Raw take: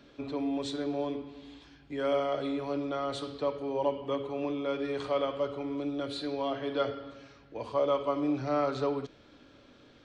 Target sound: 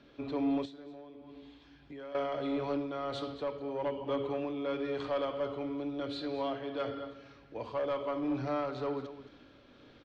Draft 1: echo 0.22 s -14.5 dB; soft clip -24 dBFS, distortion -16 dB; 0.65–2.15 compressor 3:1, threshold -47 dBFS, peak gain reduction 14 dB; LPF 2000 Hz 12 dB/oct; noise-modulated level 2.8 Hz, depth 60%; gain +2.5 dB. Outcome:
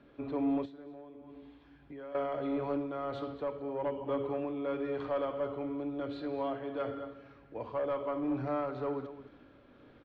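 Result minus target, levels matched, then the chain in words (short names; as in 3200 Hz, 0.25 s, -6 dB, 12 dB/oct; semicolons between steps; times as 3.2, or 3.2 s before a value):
4000 Hz band -9.0 dB
echo 0.22 s -14.5 dB; soft clip -24 dBFS, distortion -16 dB; 0.65–2.15 compressor 3:1, threshold -47 dBFS, peak gain reduction 14 dB; LPF 4700 Hz 12 dB/oct; noise-modulated level 2.8 Hz, depth 60%; gain +2.5 dB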